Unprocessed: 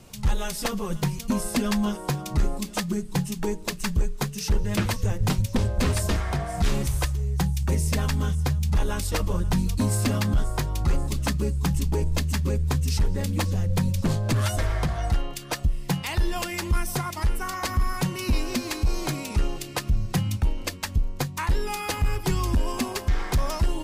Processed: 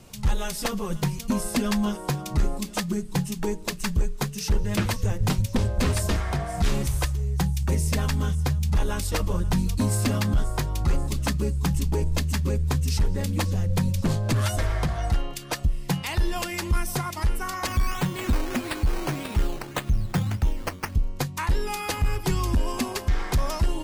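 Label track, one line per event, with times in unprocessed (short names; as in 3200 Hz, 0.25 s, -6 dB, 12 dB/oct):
17.670000	20.950000	decimation with a swept rate 10×, swing 60% 1.7 Hz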